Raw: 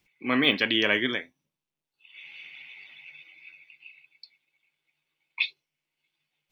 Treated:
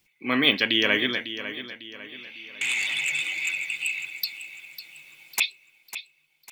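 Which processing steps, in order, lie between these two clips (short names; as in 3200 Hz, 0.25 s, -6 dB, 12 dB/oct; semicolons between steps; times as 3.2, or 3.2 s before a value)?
2.61–5.4 sine folder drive 17 dB, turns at -24 dBFS; high shelf 4400 Hz +9.5 dB; feedback echo 0.55 s, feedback 42%, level -12 dB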